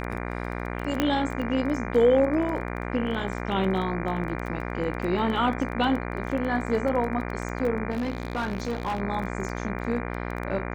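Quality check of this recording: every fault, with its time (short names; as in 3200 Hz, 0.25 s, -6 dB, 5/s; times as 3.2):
buzz 60 Hz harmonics 40 -32 dBFS
crackle 15/s -30 dBFS
1 pop -9 dBFS
7.9–9 clipped -24 dBFS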